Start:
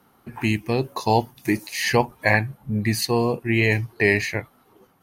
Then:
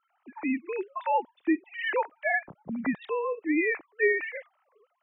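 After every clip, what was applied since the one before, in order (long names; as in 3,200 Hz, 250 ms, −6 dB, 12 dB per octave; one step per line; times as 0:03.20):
three sine waves on the formant tracks
level −7 dB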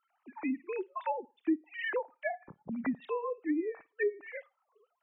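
flutter between parallel walls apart 9.4 metres, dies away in 0.25 s
treble cut that deepens with the level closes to 520 Hz, closed at −22 dBFS
reverb reduction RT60 0.73 s
level −3.5 dB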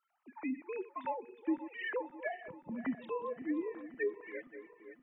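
feedback delay that plays each chunk backwards 263 ms, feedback 70%, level −13.5 dB
level −4 dB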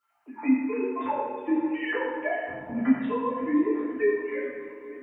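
convolution reverb RT60 1.4 s, pre-delay 5 ms, DRR −8.5 dB
level +2 dB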